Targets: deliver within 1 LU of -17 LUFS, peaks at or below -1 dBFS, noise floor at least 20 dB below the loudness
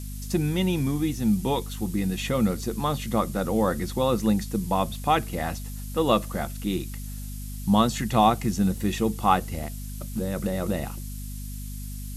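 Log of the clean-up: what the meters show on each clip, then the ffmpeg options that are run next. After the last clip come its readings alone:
hum 50 Hz; highest harmonic 250 Hz; hum level -33 dBFS; noise floor -35 dBFS; noise floor target -46 dBFS; loudness -26.0 LUFS; peak level -7.0 dBFS; loudness target -17.0 LUFS
-> -af "bandreject=f=50:t=h:w=6,bandreject=f=100:t=h:w=6,bandreject=f=150:t=h:w=6,bandreject=f=200:t=h:w=6,bandreject=f=250:t=h:w=6"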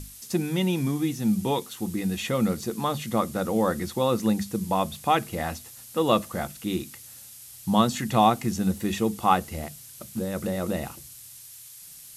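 hum not found; noise floor -46 dBFS; noise floor target -47 dBFS
-> -af "afftdn=nr=6:nf=-46"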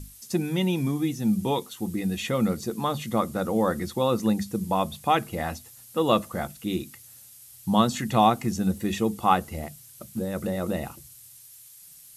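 noise floor -49 dBFS; loudness -26.5 LUFS; peak level -7.0 dBFS; loudness target -17.0 LUFS
-> -af "volume=2.99,alimiter=limit=0.891:level=0:latency=1"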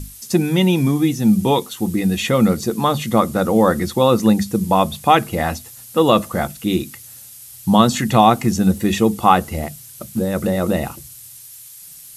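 loudness -17.5 LUFS; peak level -1.0 dBFS; noise floor -40 dBFS

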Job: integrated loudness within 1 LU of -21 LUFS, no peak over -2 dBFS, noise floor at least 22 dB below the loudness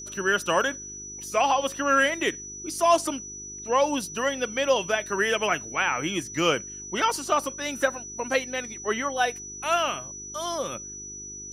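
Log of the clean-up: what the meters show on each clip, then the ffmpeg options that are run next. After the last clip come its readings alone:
hum 50 Hz; highest harmonic 400 Hz; hum level -46 dBFS; steady tone 5.9 kHz; tone level -37 dBFS; loudness -26.0 LUFS; peak level -8.5 dBFS; loudness target -21.0 LUFS
-> -af "bandreject=f=50:t=h:w=4,bandreject=f=100:t=h:w=4,bandreject=f=150:t=h:w=4,bandreject=f=200:t=h:w=4,bandreject=f=250:t=h:w=4,bandreject=f=300:t=h:w=4,bandreject=f=350:t=h:w=4,bandreject=f=400:t=h:w=4"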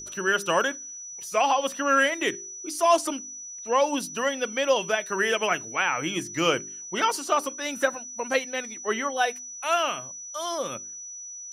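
hum not found; steady tone 5.9 kHz; tone level -37 dBFS
-> -af "bandreject=f=5900:w=30"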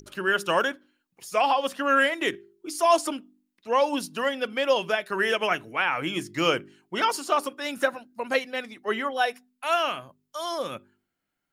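steady tone not found; loudness -26.0 LUFS; peak level -8.5 dBFS; loudness target -21.0 LUFS
-> -af "volume=1.78"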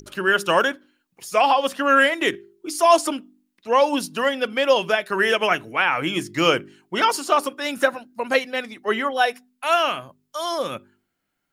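loudness -21.0 LUFS; peak level -3.5 dBFS; noise floor -77 dBFS

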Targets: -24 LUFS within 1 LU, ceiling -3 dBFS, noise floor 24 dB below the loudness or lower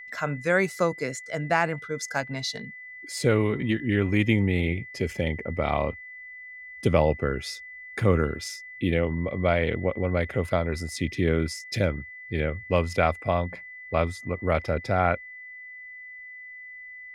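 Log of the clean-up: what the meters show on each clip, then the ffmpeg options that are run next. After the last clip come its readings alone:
steady tone 2 kHz; tone level -40 dBFS; loudness -26.5 LUFS; peak level -7.0 dBFS; loudness target -24.0 LUFS
-> -af "bandreject=f=2000:w=30"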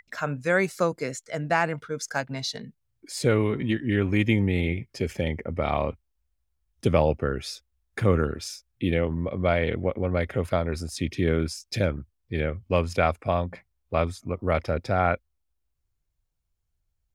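steady tone not found; loudness -26.5 LUFS; peak level -6.5 dBFS; loudness target -24.0 LUFS
-> -af "volume=1.33"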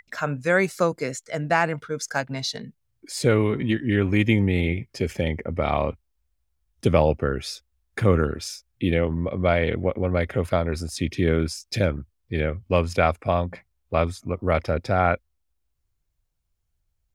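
loudness -24.0 LUFS; peak level -4.0 dBFS; noise floor -74 dBFS

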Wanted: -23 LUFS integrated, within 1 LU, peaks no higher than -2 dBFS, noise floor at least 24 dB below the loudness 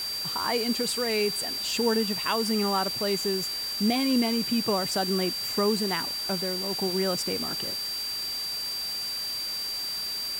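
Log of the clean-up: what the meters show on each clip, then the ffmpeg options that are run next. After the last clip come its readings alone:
steady tone 4.7 kHz; tone level -30 dBFS; noise floor -32 dBFS; noise floor target -51 dBFS; loudness -26.5 LUFS; peak level -13.5 dBFS; loudness target -23.0 LUFS
-> -af "bandreject=f=4700:w=30"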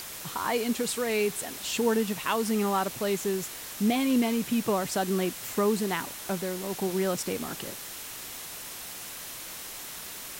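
steady tone not found; noise floor -41 dBFS; noise floor target -54 dBFS
-> -af "afftdn=nr=13:nf=-41"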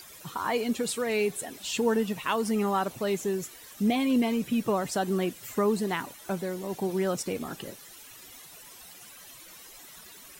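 noise floor -49 dBFS; noise floor target -53 dBFS
-> -af "afftdn=nr=6:nf=-49"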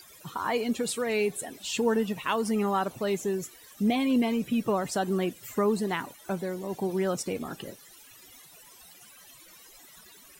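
noise floor -53 dBFS; loudness -29.0 LUFS; peak level -14.5 dBFS; loudness target -23.0 LUFS
-> -af "volume=2"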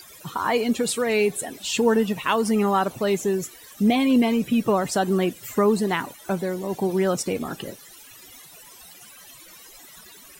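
loudness -23.0 LUFS; peak level -8.0 dBFS; noise floor -47 dBFS

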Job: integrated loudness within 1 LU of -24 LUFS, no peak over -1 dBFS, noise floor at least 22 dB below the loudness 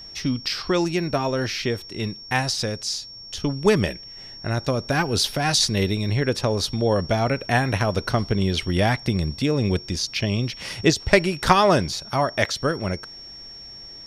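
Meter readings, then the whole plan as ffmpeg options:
steady tone 5.5 kHz; tone level -38 dBFS; loudness -22.5 LUFS; peak level -1.5 dBFS; loudness target -24.0 LUFS
-> -af "bandreject=f=5500:w=30"
-af "volume=0.841"

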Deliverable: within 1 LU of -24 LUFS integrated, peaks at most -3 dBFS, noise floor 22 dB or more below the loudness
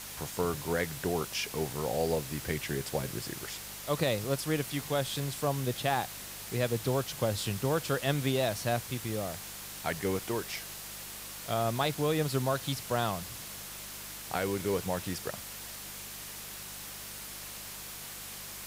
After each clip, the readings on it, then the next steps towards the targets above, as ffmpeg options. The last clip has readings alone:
hum 50 Hz; highest harmonic 200 Hz; hum level -55 dBFS; noise floor -44 dBFS; noise floor target -56 dBFS; loudness -33.5 LUFS; peak level -15.0 dBFS; loudness target -24.0 LUFS
-> -af "bandreject=f=50:t=h:w=4,bandreject=f=100:t=h:w=4,bandreject=f=150:t=h:w=4,bandreject=f=200:t=h:w=4"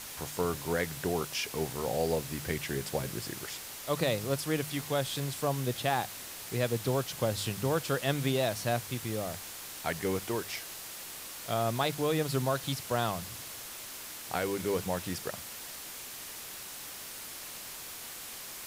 hum not found; noise floor -44 dBFS; noise floor target -56 dBFS
-> -af "afftdn=nr=12:nf=-44"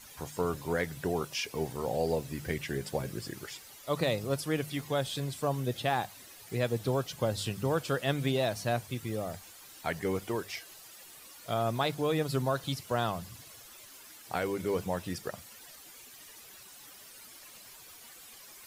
noise floor -52 dBFS; noise floor target -55 dBFS
-> -af "afftdn=nr=6:nf=-52"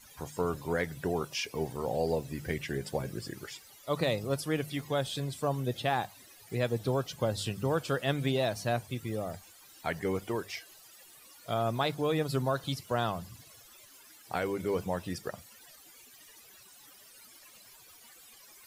noise floor -56 dBFS; loudness -33.0 LUFS; peak level -16.0 dBFS; loudness target -24.0 LUFS
-> -af "volume=2.82"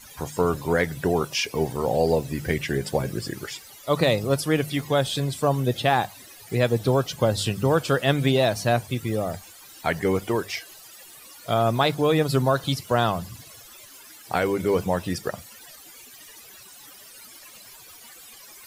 loudness -24.0 LUFS; peak level -7.0 dBFS; noise floor -47 dBFS

